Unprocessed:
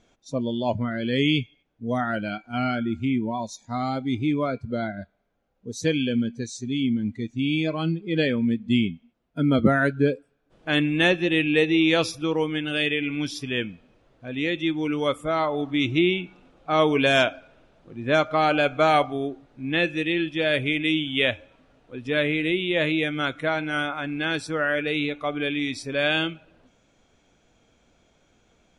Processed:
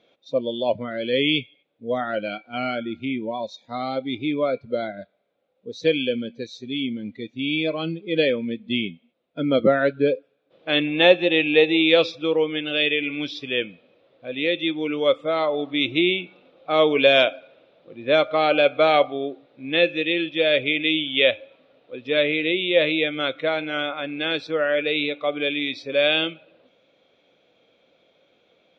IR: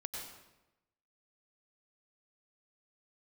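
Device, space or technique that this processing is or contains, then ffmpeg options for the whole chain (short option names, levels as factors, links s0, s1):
kitchen radio: -filter_complex "[0:a]highpass=210,equalizer=f=230:t=q:w=4:g=-4,equalizer=f=530:t=q:w=4:g=10,equalizer=f=920:t=q:w=4:g=-4,equalizer=f=1600:t=q:w=4:g=-4,equalizer=f=2400:t=q:w=4:g=4,equalizer=f=3700:t=q:w=4:g=8,lowpass=f=4300:w=0.5412,lowpass=f=4300:w=1.3066,asettb=1/sr,asplit=3[s0][s1][s2];[s0]atrim=end=10.874[s3];[s1]atrim=start=10.87:end=11.82,asetpts=PTS-STARTPTS,afade=t=in:d=0.004:c=qsin,afade=t=out:st=0.946:d=0.004:c=qsin,equalizer=f=830:t=o:w=0.52:g=9.5[s4];[s2]atrim=start=11.816[s5];[s3][s4]acrossfade=d=0.004:c1=hsin:c2=qsin[s6];[s6][s5]acrossfade=d=0.004:c1=qsin:c2=hsin"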